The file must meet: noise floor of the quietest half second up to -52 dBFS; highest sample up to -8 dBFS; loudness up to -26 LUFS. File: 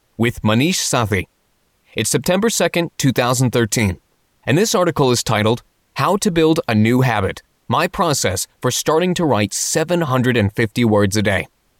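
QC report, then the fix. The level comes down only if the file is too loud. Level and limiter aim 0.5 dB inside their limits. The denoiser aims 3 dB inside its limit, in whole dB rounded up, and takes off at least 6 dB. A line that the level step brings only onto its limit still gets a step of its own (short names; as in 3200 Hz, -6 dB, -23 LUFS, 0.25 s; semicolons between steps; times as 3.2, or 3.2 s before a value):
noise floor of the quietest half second -62 dBFS: OK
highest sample -4.5 dBFS: fail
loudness -17.0 LUFS: fail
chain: gain -9.5 dB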